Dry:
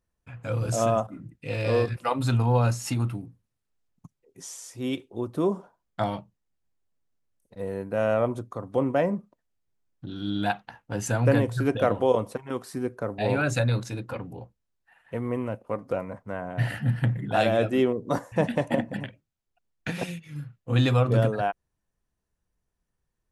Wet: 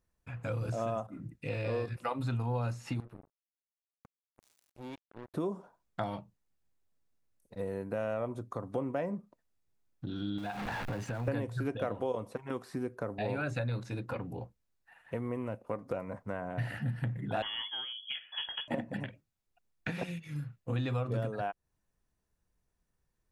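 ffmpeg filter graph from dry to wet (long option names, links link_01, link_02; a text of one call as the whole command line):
ffmpeg -i in.wav -filter_complex "[0:a]asettb=1/sr,asplit=3[link_01][link_02][link_03];[link_01]atrim=end=3.004[link_04];[link_02]atrim=start=3:end=5.34,asetpts=PTS-STARTPTS,afade=type=in:duration=0.004:curve=qsin,afade=type=out:start_time=2.336:duration=0.004:curve=qsin,equalizer=frequency=6000:width_type=o:width=2.1:gain=-9,acompressor=threshold=-51dB:ratio=2.5:attack=3.2:release=140:knee=1:detection=peak,acrusher=bits=6:mix=0:aa=0.5[link_05];[link_03]atrim=start=5.336[link_06];[link_04][link_05]acrossfade=duration=0.004:curve1=hsin:curve2=qsin[link_07];[link_07][link_06]acrossfade=duration=0.004:curve1=qsin:curve2=hsin,asettb=1/sr,asplit=3[link_08][link_09][link_10];[link_08]atrim=end=10.384[link_11];[link_09]atrim=start=10.38:end=11.28,asetpts=PTS-STARTPTS,afade=type=in:duration=0.004:curve=qsin,afade=type=out:start_time=0.896:duration=0.004:curve=qsin,aeval=exprs='val(0)+0.5*0.0316*sgn(val(0))':channel_layout=same,acompressor=threshold=-30dB:ratio=6:attack=3.2:release=140:knee=1:detection=peak[link_12];[link_10]atrim=start=11.276[link_13];[link_11][link_12]acrossfade=duration=0.004:curve1=hsin:curve2=qsin[link_14];[link_14][link_13]acrossfade=duration=0.004:curve1=qsin:curve2=hsin,asettb=1/sr,asplit=3[link_15][link_16][link_17];[link_15]atrim=end=17.424[link_18];[link_16]atrim=start=17.42:end=18.68,asetpts=PTS-STARTPTS,afade=type=in:duration=0.004:curve=qsin,afade=type=out:start_time=1.256:duration=0.004:curve=qsin,equalizer=frequency=770:width=1.2:gain=-7.5,lowpass=frequency=3000:width_type=q:width=0.5098,lowpass=frequency=3000:width_type=q:width=0.6013,lowpass=frequency=3000:width_type=q:width=0.9,lowpass=frequency=3000:width_type=q:width=2.563,afreqshift=-3500[link_19];[link_17]atrim=start=18.676[link_20];[link_18][link_19]acrossfade=duration=0.004:curve1=hsin:curve2=qsin[link_21];[link_21][link_20]acrossfade=duration=0.004:curve1=qsin:curve2=hsin,acompressor=threshold=-34dB:ratio=3,bandreject=frequency=3100:width=21,acrossover=split=3700[link_22][link_23];[link_23]acompressor=threshold=-58dB:ratio=4:attack=1:release=60[link_24];[link_22][link_24]amix=inputs=2:normalize=0" out.wav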